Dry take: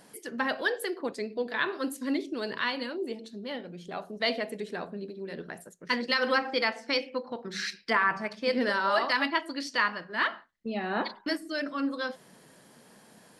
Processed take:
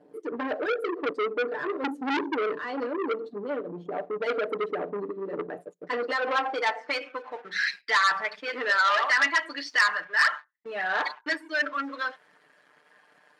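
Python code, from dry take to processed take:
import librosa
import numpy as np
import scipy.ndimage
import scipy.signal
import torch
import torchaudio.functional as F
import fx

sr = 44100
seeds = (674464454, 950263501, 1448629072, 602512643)

y = fx.envelope_sharpen(x, sr, power=1.5)
y = fx.leveller(y, sr, passes=2)
y = fx.filter_sweep_bandpass(y, sr, from_hz=380.0, to_hz=1700.0, start_s=5.26, end_s=7.41, q=1.3)
y = y + 0.61 * np.pad(y, (int(6.7 * sr / 1000.0), 0))[:len(y)]
y = fx.transformer_sat(y, sr, knee_hz=2700.0)
y = F.gain(torch.from_numpy(y), 2.0).numpy()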